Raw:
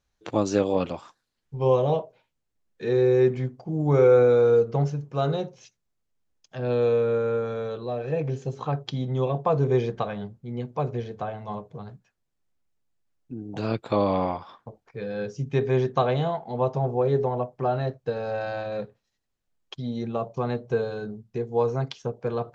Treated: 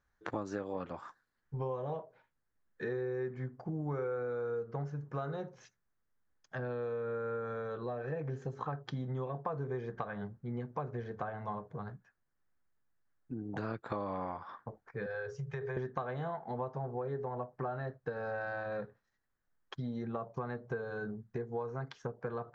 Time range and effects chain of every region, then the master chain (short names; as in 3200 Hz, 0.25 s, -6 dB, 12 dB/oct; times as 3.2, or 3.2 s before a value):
15.06–15.77 elliptic band-stop 160–400 Hz + notches 60/120/180/240/300/360/420/480/540 Hz + compressor 4:1, threshold -31 dBFS
whole clip: EQ curve 650 Hz 0 dB, 1700 Hz +9 dB, 2600 Hz -7 dB; compressor 6:1, threshold -32 dBFS; gain -3 dB